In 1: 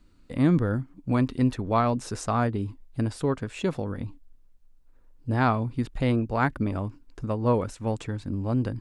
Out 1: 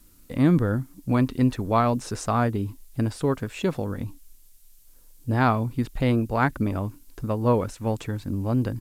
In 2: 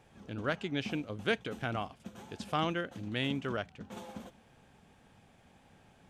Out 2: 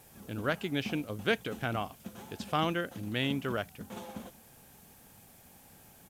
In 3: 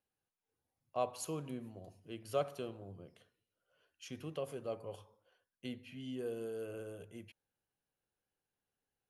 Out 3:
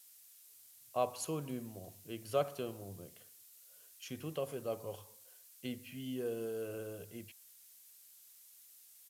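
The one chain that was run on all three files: added noise violet -57 dBFS; downsampling 32000 Hz; gain +2 dB

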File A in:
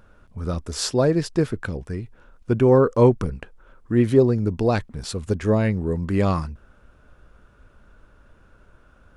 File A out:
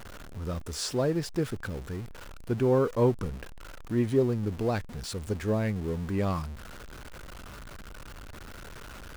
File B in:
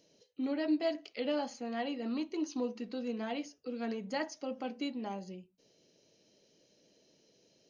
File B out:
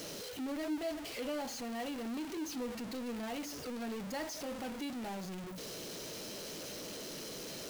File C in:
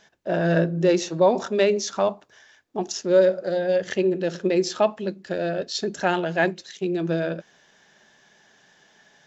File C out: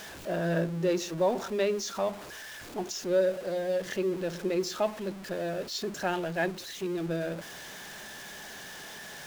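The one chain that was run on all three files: zero-crossing step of -29.5 dBFS; gain -9 dB

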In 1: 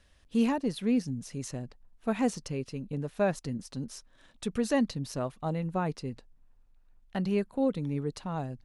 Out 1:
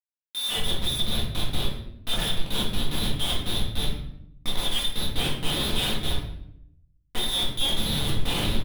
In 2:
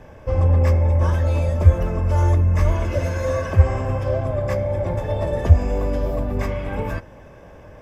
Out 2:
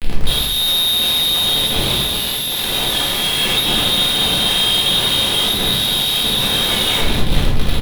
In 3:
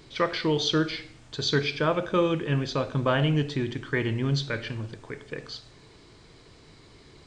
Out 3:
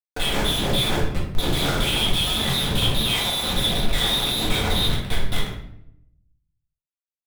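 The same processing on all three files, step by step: on a send: echo 0.931 s -19.5 dB; on the sum: compressor 5:1, threshold -20 dBFS; in parallel at -10 dB: crossover distortion -46 dBFS; on the sum: inverted band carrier 3800 Hz; notches 50/100/150/200/250/300 Hz; Schmitt trigger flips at -30 dBFS; shoebox room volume 180 m³, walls mixed, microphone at 1.9 m; Doppler distortion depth 0.14 ms; gain -1.5 dB

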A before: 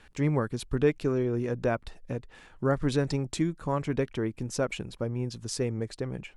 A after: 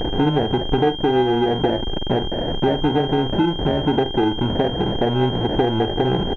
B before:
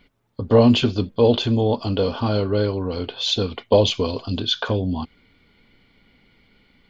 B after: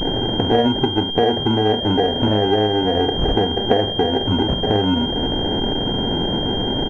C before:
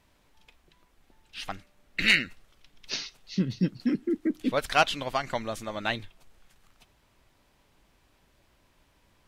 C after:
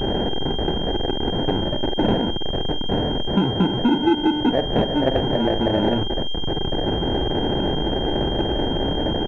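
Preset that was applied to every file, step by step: zero-crossing step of -24 dBFS; bell 370 Hz +12 dB 1.1 oct; compressor 5:1, threshold -21 dBFS; vibrato 0.42 Hz 35 cents; sample-and-hold 37×; air absorption 300 m; doubler 47 ms -11 dB; pulse-width modulation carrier 3200 Hz; gain +6 dB

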